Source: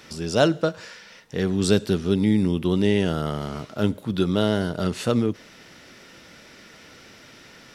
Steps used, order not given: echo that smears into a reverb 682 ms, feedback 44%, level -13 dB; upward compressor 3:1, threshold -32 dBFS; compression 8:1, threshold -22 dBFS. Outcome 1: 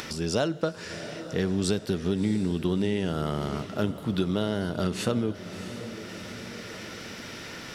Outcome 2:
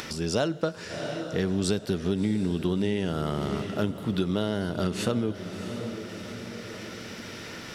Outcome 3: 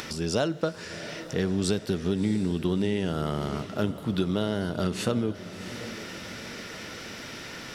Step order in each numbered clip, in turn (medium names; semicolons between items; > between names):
compression > echo that smears into a reverb > upward compressor; echo that smears into a reverb > upward compressor > compression; upward compressor > compression > echo that smears into a reverb